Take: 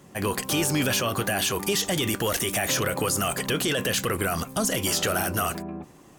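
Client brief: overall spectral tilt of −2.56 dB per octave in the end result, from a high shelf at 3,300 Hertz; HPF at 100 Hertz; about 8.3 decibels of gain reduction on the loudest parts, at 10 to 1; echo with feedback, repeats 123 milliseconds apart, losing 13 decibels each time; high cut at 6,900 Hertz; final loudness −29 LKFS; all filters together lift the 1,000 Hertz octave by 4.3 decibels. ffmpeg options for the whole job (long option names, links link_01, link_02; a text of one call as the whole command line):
ffmpeg -i in.wav -af "highpass=100,lowpass=6900,equalizer=frequency=1000:width_type=o:gain=5,highshelf=frequency=3300:gain=7,acompressor=threshold=-27dB:ratio=10,aecho=1:1:123|246|369:0.224|0.0493|0.0108,volume=1dB" out.wav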